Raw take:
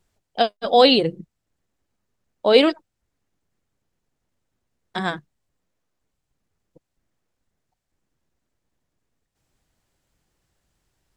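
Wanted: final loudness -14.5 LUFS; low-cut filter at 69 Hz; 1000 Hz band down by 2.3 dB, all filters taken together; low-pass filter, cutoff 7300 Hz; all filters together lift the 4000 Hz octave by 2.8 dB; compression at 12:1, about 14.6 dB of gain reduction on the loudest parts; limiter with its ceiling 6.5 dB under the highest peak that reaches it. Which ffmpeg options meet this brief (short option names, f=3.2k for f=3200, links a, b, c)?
-af "highpass=69,lowpass=7.3k,equalizer=f=1k:t=o:g=-4,equalizer=f=4k:t=o:g=4,acompressor=threshold=-23dB:ratio=12,volume=17dB,alimiter=limit=0dB:level=0:latency=1"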